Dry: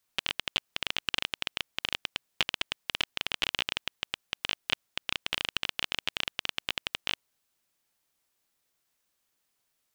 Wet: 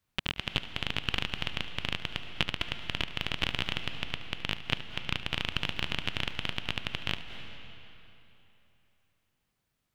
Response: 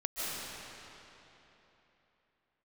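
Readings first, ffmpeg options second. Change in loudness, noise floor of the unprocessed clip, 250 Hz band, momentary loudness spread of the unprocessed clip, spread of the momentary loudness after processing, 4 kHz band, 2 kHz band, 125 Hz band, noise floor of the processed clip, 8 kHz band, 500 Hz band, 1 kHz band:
−1.0 dB, −78 dBFS, +8.0 dB, 5 LU, 6 LU, −1.5 dB, −0.5 dB, +13.5 dB, −80 dBFS, −6.5 dB, +2.0 dB, +0.5 dB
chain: -filter_complex "[0:a]bass=frequency=250:gain=14,treble=frequency=4000:gain=-8,asplit=2[link_01][link_02];[1:a]atrim=start_sample=2205,asetrate=48510,aresample=44100,adelay=73[link_03];[link_02][link_03]afir=irnorm=-1:irlink=0,volume=-13.5dB[link_04];[link_01][link_04]amix=inputs=2:normalize=0"

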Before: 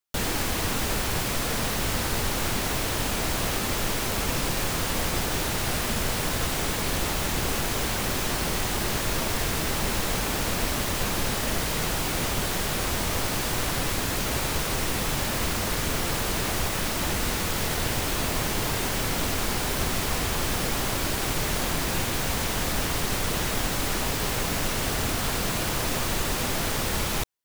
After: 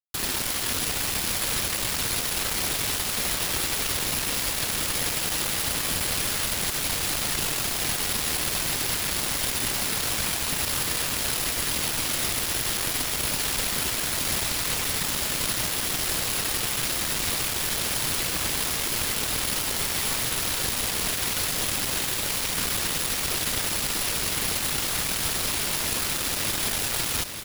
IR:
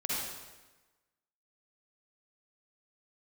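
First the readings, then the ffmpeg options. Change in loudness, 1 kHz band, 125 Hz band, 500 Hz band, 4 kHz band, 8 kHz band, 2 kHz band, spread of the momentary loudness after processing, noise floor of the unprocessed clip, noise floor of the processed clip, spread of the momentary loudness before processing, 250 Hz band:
+2.0 dB, −3.5 dB, −6.0 dB, −5.0 dB, +3.0 dB, +4.0 dB, 0.0 dB, 1 LU, −28 dBFS, −29 dBFS, 0 LU, −5.5 dB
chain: -filter_complex "[0:a]highshelf=frequency=3900:gain=11.5,bandreject=frequency=6200:width=9.4,acrossover=split=5900[link_01][link_02];[link_02]acompressor=threshold=-38dB:ratio=4:attack=1:release=60[link_03];[link_01][link_03]amix=inputs=2:normalize=0,equalizer=frequency=720:width=0.52:gain=-5,acrossover=split=260[link_04][link_05];[link_04]alimiter=level_in=5.5dB:limit=-24dB:level=0:latency=1:release=109,volume=-5.5dB[link_06];[link_06][link_05]amix=inputs=2:normalize=0,aeval=exprs='val(0)+0.0282*sin(2*PI*11000*n/s)':channel_layout=same,afftfilt=real='hypot(re,im)*cos(2*PI*random(0))':imag='hypot(re,im)*sin(2*PI*random(1))':win_size=512:overlap=0.75,acrusher=bits=4:mix=0:aa=0.000001,asplit=2[link_07][link_08];[link_08]aecho=0:1:890|1780|2670|3560|4450|5340:0.335|0.174|0.0906|0.0471|0.0245|0.0127[link_09];[link_07][link_09]amix=inputs=2:normalize=0,volume=5.5dB"

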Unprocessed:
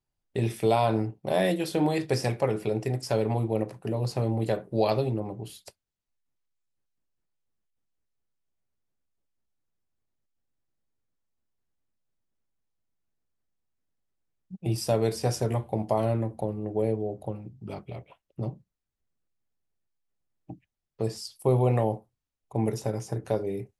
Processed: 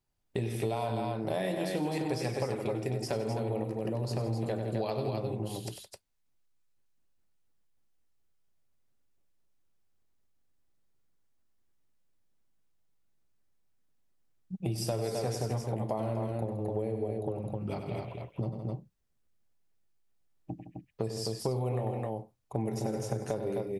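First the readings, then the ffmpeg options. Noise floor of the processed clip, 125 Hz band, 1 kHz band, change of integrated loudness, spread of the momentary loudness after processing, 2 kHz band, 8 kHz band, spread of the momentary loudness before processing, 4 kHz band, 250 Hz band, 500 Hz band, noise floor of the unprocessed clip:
−73 dBFS, −4.5 dB, −6.0 dB, −6.0 dB, 7 LU, −5.5 dB, −3.0 dB, 15 LU, −4.0 dB, −5.0 dB, −5.5 dB, −85 dBFS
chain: -af "aecho=1:1:96.21|163.3|259.5:0.355|0.251|0.562,acompressor=threshold=-32dB:ratio=6,volume=2.5dB"

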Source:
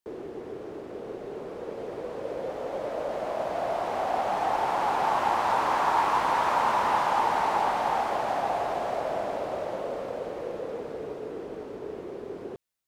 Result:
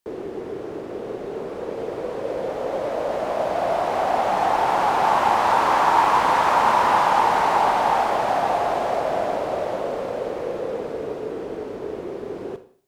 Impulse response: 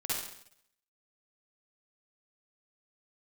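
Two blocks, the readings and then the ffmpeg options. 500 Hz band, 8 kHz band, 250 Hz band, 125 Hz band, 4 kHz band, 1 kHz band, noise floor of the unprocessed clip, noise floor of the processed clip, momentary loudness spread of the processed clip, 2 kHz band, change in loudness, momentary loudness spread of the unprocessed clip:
+7.0 dB, +7.0 dB, +7.0 dB, +7.0 dB, +7.0 dB, +7.0 dB, −40 dBFS, −34 dBFS, 14 LU, +7.0 dB, +7.0 dB, 14 LU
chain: -filter_complex "[0:a]asplit=2[link_01][link_02];[1:a]atrim=start_sample=2205,asetrate=61740,aresample=44100[link_03];[link_02][link_03]afir=irnorm=-1:irlink=0,volume=-11dB[link_04];[link_01][link_04]amix=inputs=2:normalize=0,volume=5.5dB"

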